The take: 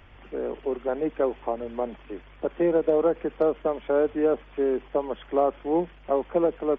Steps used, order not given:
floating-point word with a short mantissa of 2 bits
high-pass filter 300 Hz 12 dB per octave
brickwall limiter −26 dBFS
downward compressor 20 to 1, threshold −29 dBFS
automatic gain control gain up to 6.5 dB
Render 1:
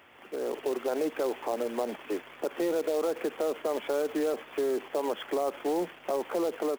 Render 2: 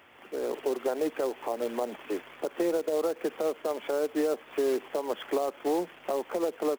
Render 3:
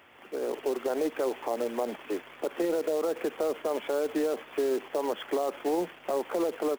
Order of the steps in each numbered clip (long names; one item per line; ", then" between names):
brickwall limiter, then high-pass filter, then downward compressor, then floating-point word with a short mantissa, then automatic gain control
high-pass filter, then downward compressor, then floating-point word with a short mantissa, then brickwall limiter, then automatic gain control
high-pass filter, then floating-point word with a short mantissa, then brickwall limiter, then downward compressor, then automatic gain control